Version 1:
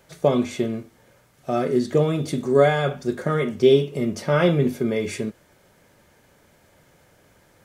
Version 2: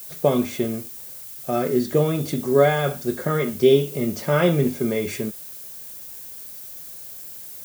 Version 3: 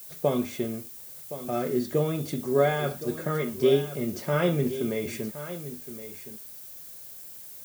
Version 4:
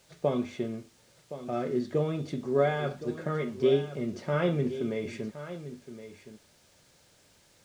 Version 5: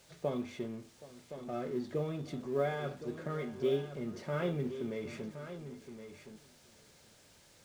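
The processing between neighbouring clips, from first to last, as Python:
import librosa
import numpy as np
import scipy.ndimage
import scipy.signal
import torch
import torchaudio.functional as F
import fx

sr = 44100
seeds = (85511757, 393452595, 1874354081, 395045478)

y1 = fx.dmg_noise_colour(x, sr, seeds[0], colour='violet', level_db=-38.0)
y2 = y1 + 10.0 ** (-13.0 / 20.0) * np.pad(y1, (int(1068 * sr / 1000.0), 0))[:len(y1)]
y2 = y2 * librosa.db_to_amplitude(-6.0)
y3 = fx.air_absorb(y2, sr, metres=110.0)
y3 = y3 * librosa.db_to_amplitude(-2.5)
y4 = fx.law_mismatch(y3, sr, coded='mu')
y4 = y4 + 10.0 ** (-19.0 / 20.0) * np.pad(y4, (int(773 * sr / 1000.0), 0))[:len(y4)]
y4 = y4 * librosa.db_to_amplitude(-8.0)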